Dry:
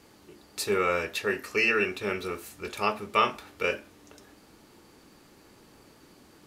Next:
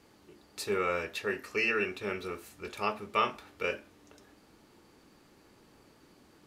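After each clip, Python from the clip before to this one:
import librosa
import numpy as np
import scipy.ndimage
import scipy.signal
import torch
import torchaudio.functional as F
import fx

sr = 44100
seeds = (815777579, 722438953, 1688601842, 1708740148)

y = fx.high_shelf(x, sr, hz=6000.0, db=-4.5)
y = y * librosa.db_to_amplitude(-4.5)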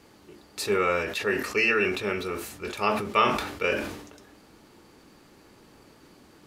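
y = fx.sustainer(x, sr, db_per_s=64.0)
y = y * librosa.db_to_amplitude(6.0)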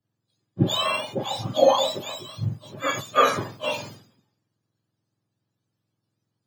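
y = fx.octave_mirror(x, sr, pivot_hz=1200.0)
y = fx.band_widen(y, sr, depth_pct=100)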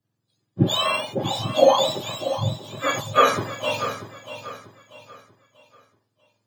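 y = fx.echo_feedback(x, sr, ms=639, feedback_pct=35, wet_db=-11.5)
y = y * librosa.db_to_amplitude(2.0)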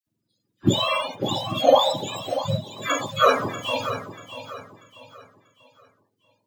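y = fx.spec_quant(x, sr, step_db=30)
y = fx.dispersion(y, sr, late='lows', ms=68.0, hz=1400.0)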